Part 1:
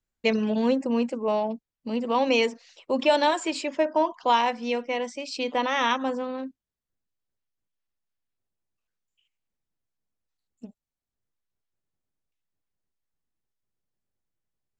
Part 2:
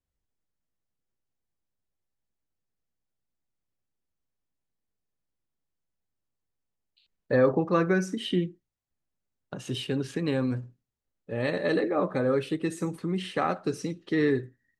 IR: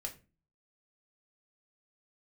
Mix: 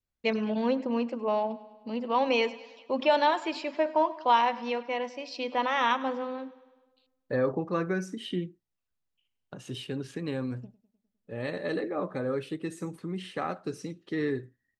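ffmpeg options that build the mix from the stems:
-filter_complex "[0:a]lowpass=frequency=5500:width=0.5412,lowpass=frequency=5500:width=1.3066,adynamicequalizer=threshold=0.0224:dfrequency=1100:dqfactor=0.71:tfrequency=1100:tqfactor=0.71:attack=5:release=100:ratio=0.375:range=2.5:mode=boostabove:tftype=bell,volume=-5.5dB,asplit=2[link_01][link_02];[link_02]volume=-18.5dB[link_03];[1:a]volume=-5.5dB[link_04];[link_03]aecho=0:1:102|204|306|408|510|612|714|816|918:1|0.59|0.348|0.205|0.121|0.0715|0.0422|0.0249|0.0147[link_05];[link_01][link_04][link_05]amix=inputs=3:normalize=0"

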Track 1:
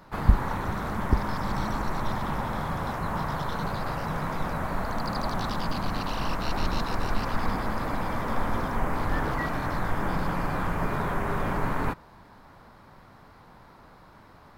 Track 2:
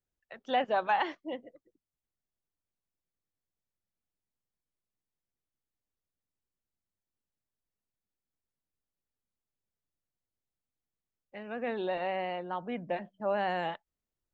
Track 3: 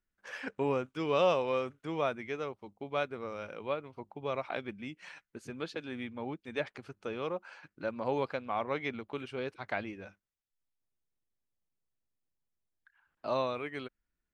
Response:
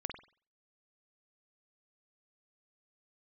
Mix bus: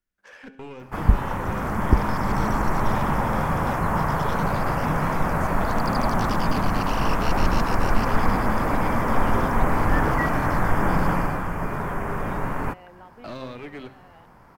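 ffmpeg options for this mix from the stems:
-filter_complex "[0:a]equalizer=frequency=3900:width_type=o:width=0.38:gain=-13.5,adelay=800,volume=-1dB,afade=type=out:start_time=11.12:duration=0.3:silence=0.473151[link_01];[1:a]acompressor=threshold=-34dB:ratio=6,adelay=500,volume=-16dB[link_02];[2:a]bandreject=frequency=133.6:width_type=h:width=4,bandreject=frequency=267.2:width_type=h:width=4,bandreject=frequency=400.8:width_type=h:width=4,bandreject=frequency=534.4:width_type=h:width=4,bandreject=frequency=668:width_type=h:width=4,bandreject=frequency=801.6:width_type=h:width=4,bandreject=frequency=935.2:width_type=h:width=4,bandreject=frequency=1068.8:width_type=h:width=4,bandreject=frequency=1202.4:width_type=h:width=4,bandreject=frequency=1336:width_type=h:width=4,bandreject=frequency=1469.6:width_type=h:width=4,bandreject=frequency=1603.2:width_type=h:width=4,bandreject=frequency=1736.8:width_type=h:width=4,bandreject=frequency=1870.4:width_type=h:width=4,bandreject=frequency=2004:width_type=h:width=4,bandreject=frequency=2137.6:width_type=h:width=4,bandreject=frequency=2271.2:width_type=h:width=4,bandreject=frequency=2404.8:width_type=h:width=4,bandreject=frequency=2538.4:width_type=h:width=4,bandreject=frequency=2672:width_type=h:width=4,bandreject=frequency=2805.6:width_type=h:width=4,bandreject=frequency=2939.2:width_type=h:width=4,bandreject=frequency=3072.8:width_type=h:width=4,bandreject=frequency=3206.4:width_type=h:width=4,bandreject=frequency=3340:width_type=h:width=4,bandreject=frequency=3473.6:width_type=h:width=4,bandreject=frequency=3607.2:width_type=h:width=4,bandreject=frequency=3740.8:width_type=h:width=4,bandreject=frequency=3874.4:width_type=h:width=4,bandreject=frequency=4008:width_type=h:width=4,bandreject=frequency=4141.6:width_type=h:width=4,bandreject=frequency=4275.2:width_type=h:width=4,bandreject=frequency=4408.8:width_type=h:width=4,bandreject=frequency=4542.4:width_type=h:width=4,acrossover=split=360|1600[link_03][link_04][link_05];[link_03]acompressor=threshold=-40dB:ratio=4[link_06];[link_04]acompressor=threshold=-50dB:ratio=4[link_07];[link_05]acompressor=threshold=-54dB:ratio=4[link_08];[link_06][link_07][link_08]amix=inputs=3:normalize=0,aeval=exprs='clip(val(0),-1,0.00631)':channel_layout=same,volume=0.5dB,asplit=3[link_09][link_10][link_11];[link_10]volume=-19dB[link_12];[link_11]apad=whole_len=654355[link_13];[link_02][link_13]sidechaincompress=threshold=-50dB:ratio=8:attack=16:release=992[link_14];[link_12]aecho=0:1:68|136|204|272|340|408|476|544:1|0.56|0.314|0.176|0.0983|0.0551|0.0308|0.0173[link_15];[link_01][link_14][link_09][link_15]amix=inputs=4:normalize=0,dynaudnorm=framelen=110:gausssize=9:maxgain=8dB"

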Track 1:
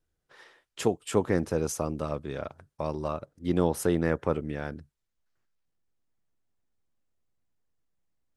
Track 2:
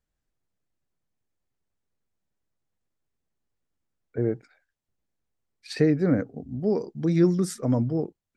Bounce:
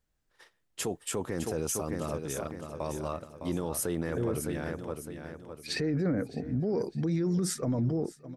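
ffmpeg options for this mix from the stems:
ffmpeg -i stem1.wav -i stem2.wav -filter_complex "[0:a]agate=range=-17dB:threshold=-52dB:ratio=16:detection=peak,highshelf=frequency=7000:gain=12,volume=-2.5dB,asplit=2[link_01][link_02];[link_02]volume=-8.5dB[link_03];[1:a]alimiter=limit=-17.5dB:level=0:latency=1,volume=3dB,asplit=2[link_04][link_05];[link_05]volume=-20.5dB[link_06];[link_03][link_06]amix=inputs=2:normalize=0,aecho=0:1:609|1218|1827|2436|3045|3654:1|0.4|0.16|0.064|0.0256|0.0102[link_07];[link_01][link_04][link_07]amix=inputs=3:normalize=0,alimiter=limit=-22dB:level=0:latency=1:release=13" out.wav

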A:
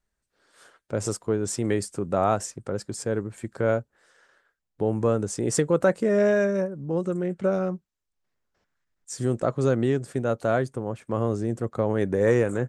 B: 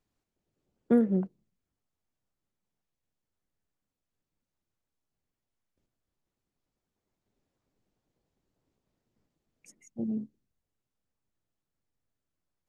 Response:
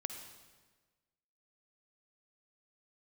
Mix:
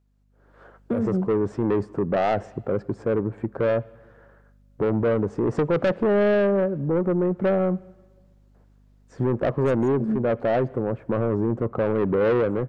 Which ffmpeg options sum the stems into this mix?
-filter_complex "[0:a]lowpass=1000,lowshelf=frequency=80:gain=-10,asoftclip=type=tanh:threshold=-24dB,volume=-0.5dB,asplit=3[link_01][link_02][link_03];[link_02]volume=-16.5dB[link_04];[1:a]aeval=exprs='val(0)+0.000631*(sin(2*PI*50*n/s)+sin(2*PI*2*50*n/s)/2+sin(2*PI*3*50*n/s)/3+sin(2*PI*4*50*n/s)/4+sin(2*PI*5*50*n/s)/5)':channel_layout=same,asoftclip=type=tanh:threshold=-14.5dB,volume=-1dB[link_05];[link_03]apad=whole_len=559543[link_06];[link_05][link_06]sidechaincompress=threshold=-32dB:ratio=8:attack=16:release=253[link_07];[2:a]atrim=start_sample=2205[link_08];[link_04][link_08]afir=irnorm=-1:irlink=0[link_09];[link_01][link_07][link_09]amix=inputs=3:normalize=0,highshelf=frequency=9000:gain=-3.5,dynaudnorm=framelen=160:gausssize=5:maxgain=10dB,alimiter=limit=-16.5dB:level=0:latency=1:release=93"

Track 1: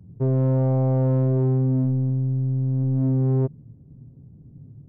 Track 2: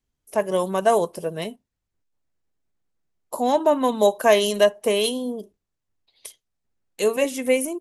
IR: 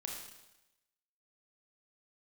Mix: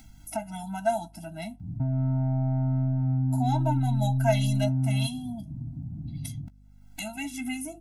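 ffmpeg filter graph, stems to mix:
-filter_complex "[0:a]acompressor=threshold=-23dB:ratio=6,adelay=1600,volume=-2.5dB,asplit=2[link_01][link_02];[link_02]volume=-10.5dB[link_03];[1:a]flanger=delay=8.8:depth=1.5:regen=-55:speed=1.2:shape=triangular,volume=-2.5dB[link_04];[2:a]atrim=start_sample=2205[link_05];[link_03][link_05]afir=irnorm=-1:irlink=0[link_06];[link_01][link_04][link_06]amix=inputs=3:normalize=0,acompressor=mode=upward:threshold=-25dB:ratio=2.5,aeval=exprs='val(0)+0.00224*(sin(2*PI*50*n/s)+sin(2*PI*2*50*n/s)/2+sin(2*PI*3*50*n/s)/3+sin(2*PI*4*50*n/s)/4+sin(2*PI*5*50*n/s)/5)':channel_layout=same,afftfilt=real='re*eq(mod(floor(b*sr/1024/320),2),0)':imag='im*eq(mod(floor(b*sr/1024/320),2),0)':win_size=1024:overlap=0.75"

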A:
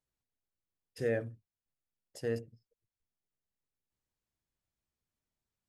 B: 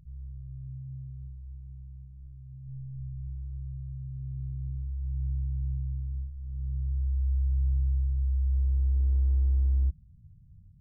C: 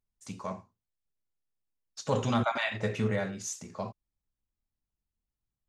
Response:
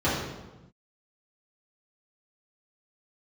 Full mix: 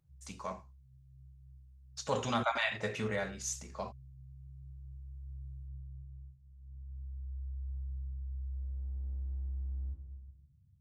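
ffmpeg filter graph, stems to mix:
-filter_complex "[1:a]volume=-18.5dB,asplit=2[link_01][link_02];[link_02]volume=-7.5dB[link_03];[2:a]volume=-0.5dB[link_04];[3:a]atrim=start_sample=2205[link_05];[link_03][link_05]afir=irnorm=-1:irlink=0[link_06];[link_01][link_04][link_06]amix=inputs=3:normalize=0,lowshelf=frequency=410:gain=-9"

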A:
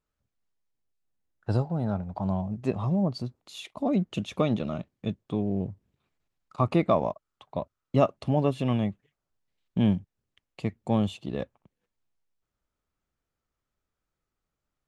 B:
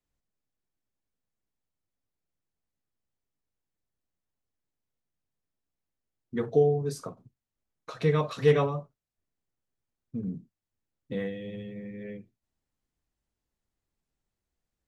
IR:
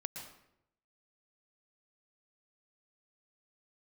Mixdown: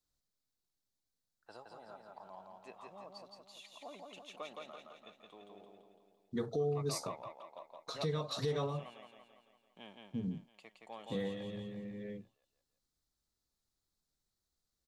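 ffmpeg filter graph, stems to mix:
-filter_complex "[0:a]highpass=800,volume=-13.5dB,asplit=2[link_01][link_02];[link_02]volume=-3dB[link_03];[1:a]highshelf=frequency=3300:width_type=q:width=3:gain=6.5,volume=-4.5dB,asplit=2[link_04][link_05];[link_05]apad=whole_len=656042[link_06];[link_01][link_06]sidechaincompress=threshold=-34dB:ratio=8:attack=16:release=481[link_07];[link_03]aecho=0:1:169|338|507|676|845|1014|1183|1352:1|0.56|0.314|0.176|0.0983|0.0551|0.0308|0.0173[link_08];[link_07][link_04][link_08]amix=inputs=3:normalize=0,alimiter=level_in=2.5dB:limit=-24dB:level=0:latency=1:release=226,volume=-2.5dB"

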